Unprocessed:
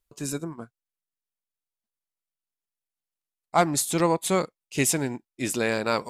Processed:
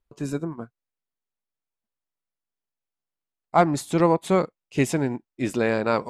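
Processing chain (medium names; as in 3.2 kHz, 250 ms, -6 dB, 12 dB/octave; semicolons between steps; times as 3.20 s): low-pass 1.4 kHz 6 dB/octave; trim +4 dB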